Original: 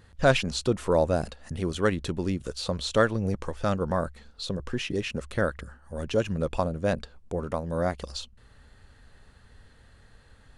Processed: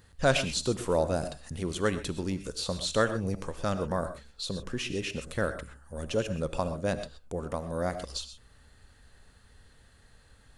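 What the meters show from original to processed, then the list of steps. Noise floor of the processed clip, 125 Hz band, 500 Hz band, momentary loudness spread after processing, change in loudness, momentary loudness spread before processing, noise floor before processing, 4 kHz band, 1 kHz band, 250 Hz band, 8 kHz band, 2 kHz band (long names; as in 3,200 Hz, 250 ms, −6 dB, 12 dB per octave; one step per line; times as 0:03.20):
−59 dBFS, −4.0 dB, −3.5 dB, 11 LU, −3.0 dB, 13 LU, −56 dBFS, −0.5 dB, −3.5 dB, −3.5 dB, +2.5 dB, −2.5 dB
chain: high-shelf EQ 5,300 Hz +9.5 dB
reverb whose tail is shaped and stops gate 150 ms rising, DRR 10 dB
level −4 dB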